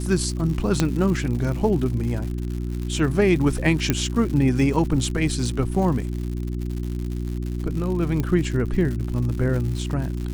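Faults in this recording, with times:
crackle 170/s -30 dBFS
hum 60 Hz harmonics 6 -27 dBFS
0.8 pop -6 dBFS
3.9 pop -5 dBFS
8.2 pop -13 dBFS

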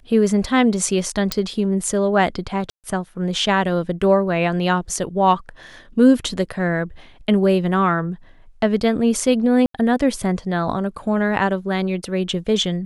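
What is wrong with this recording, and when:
1.32 pop -6 dBFS
2.7–2.84 gap 0.138 s
9.66–9.74 gap 83 ms

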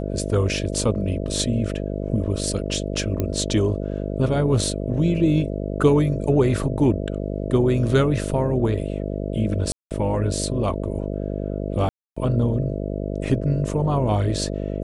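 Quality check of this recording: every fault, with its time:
buzz 50 Hz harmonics 13 -27 dBFS
3.2 pop -11 dBFS
9.72–9.91 gap 0.188 s
11.89–12.16 gap 0.275 s

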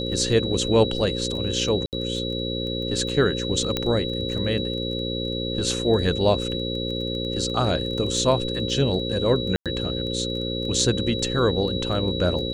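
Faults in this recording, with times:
buzz 60 Hz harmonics 9 -29 dBFS
crackle 12/s -31 dBFS
tone 3900 Hz -30 dBFS
1.86–1.93 gap 68 ms
3.77 pop -9 dBFS
9.56–9.66 gap 97 ms

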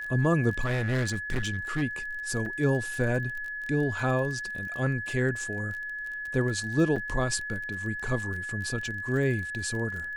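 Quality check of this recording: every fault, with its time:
crackle 25/s -35 dBFS
tone 1700 Hz -33 dBFS
0.64–1.83 clipped -24 dBFS
2.46 gap 3.4 ms
6.96 gap 5 ms

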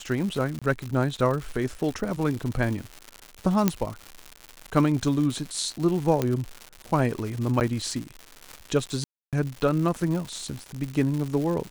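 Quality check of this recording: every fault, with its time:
crackle 220/s -30 dBFS
0.59–0.62 gap 26 ms
3.68 pop -6 dBFS
6.22 pop -11 dBFS
7.6–7.61 gap 9.2 ms
9.04–9.33 gap 0.287 s

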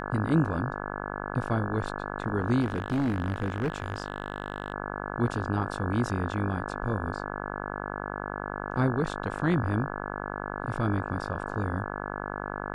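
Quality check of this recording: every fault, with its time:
buzz 50 Hz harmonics 34 -35 dBFS
2.61–4.72 clipped -23 dBFS

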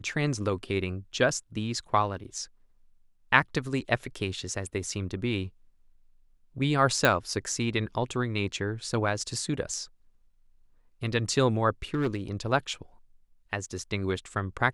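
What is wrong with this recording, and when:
7.05 pop
11.94–12.16 clipped -22.5 dBFS

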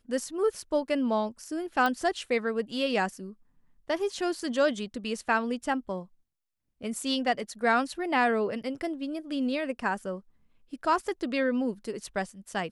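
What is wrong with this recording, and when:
1.86 pop -15 dBFS

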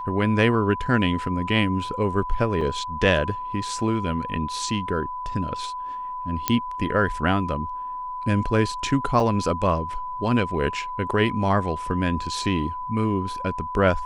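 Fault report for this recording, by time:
tone 1000 Hz -29 dBFS
2.61 gap 4.2 ms
6.48 pop -4 dBFS
9.2 gap 2.2 ms

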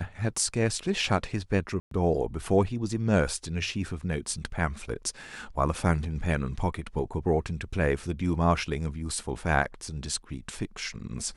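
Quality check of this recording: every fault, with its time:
1.8–1.91 gap 0.113 s

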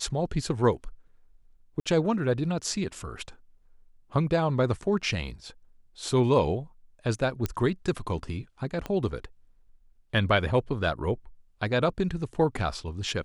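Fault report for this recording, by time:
1.8–1.86 gap 56 ms
7.46 pop -15 dBFS
8.86 pop -19 dBFS

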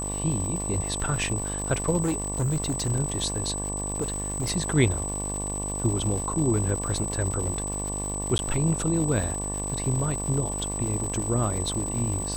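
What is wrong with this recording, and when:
buzz 50 Hz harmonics 23 -33 dBFS
crackle 250/s -32 dBFS
tone 8000 Hz -31 dBFS
2.01–2.91 clipped -22 dBFS
4.01–4.51 clipped -24 dBFS
8.38–8.39 gap 11 ms

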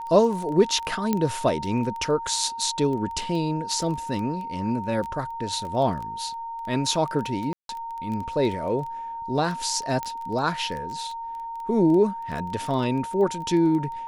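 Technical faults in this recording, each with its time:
crackle 10/s -29 dBFS
tone 920 Hz -31 dBFS
1.13 pop -10 dBFS
7.53–7.69 gap 0.162 s
10.03 pop -16 dBFS

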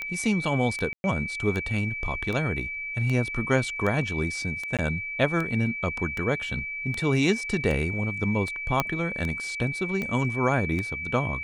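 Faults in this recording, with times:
tick 78 rpm -18 dBFS
tone 2300 Hz -31 dBFS
0.93–1.04 gap 0.111 s
4.77–4.79 gap 17 ms
8.8 pop -8 dBFS

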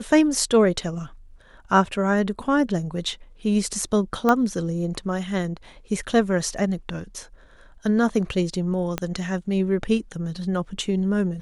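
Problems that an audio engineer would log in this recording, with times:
4.29 pop -8 dBFS
8.98 pop -10 dBFS

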